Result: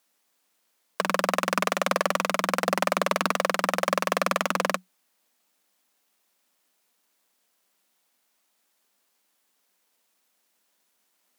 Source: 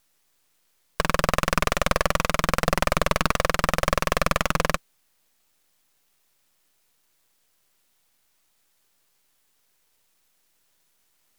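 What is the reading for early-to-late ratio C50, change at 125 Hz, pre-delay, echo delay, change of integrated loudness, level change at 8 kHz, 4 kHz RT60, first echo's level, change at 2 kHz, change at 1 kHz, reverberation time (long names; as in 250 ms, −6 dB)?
no reverb audible, −10.0 dB, no reverb audible, no echo audible, −2.0 dB, −3.0 dB, no reverb audible, no echo audible, −2.5 dB, −1.0 dB, no reverb audible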